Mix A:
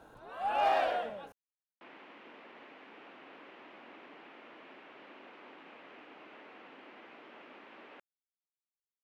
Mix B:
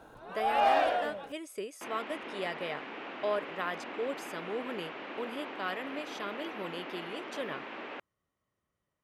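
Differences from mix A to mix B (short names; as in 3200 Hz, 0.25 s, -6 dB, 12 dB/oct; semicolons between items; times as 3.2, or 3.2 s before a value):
speech: unmuted; first sound +3.0 dB; second sound +11.0 dB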